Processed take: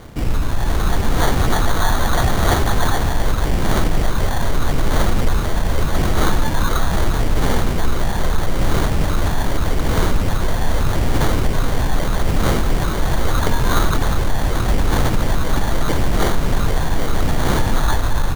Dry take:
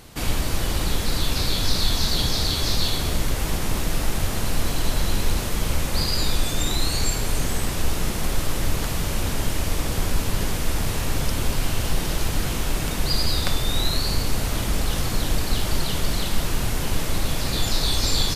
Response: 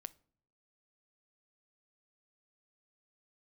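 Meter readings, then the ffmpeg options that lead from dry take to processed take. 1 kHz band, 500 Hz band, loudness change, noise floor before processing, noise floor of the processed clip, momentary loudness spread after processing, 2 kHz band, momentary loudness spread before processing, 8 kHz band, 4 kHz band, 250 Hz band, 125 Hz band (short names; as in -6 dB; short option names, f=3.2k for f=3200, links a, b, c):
+10.0 dB, +8.0 dB, +4.5 dB, -27 dBFS, -20 dBFS, 3 LU, +6.0 dB, 4 LU, -2.0 dB, -3.5 dB, +6.5 dB, +6.5 dB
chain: -filter_complex "[0:a]lowpass=f=2.9k:w=0.5412,lowpass=f=2.9k:w=1.3066,acrossover=split=1900[a][b];[a]alimiter=limit=-16.5dB:level=0:latency=1:release=34[c];[b]dynaudnorm=f=190:g=7:m=12dB[d];[c][d]amix=inputs=2:normalize=0,aphaser=in_gain=1:out_gain=1:delay=1.1:decay=0.52:speed=0.8:type=sinusoidal,acrusher=samples=17:mix=1:aa=0.000001,volume=2.5dB"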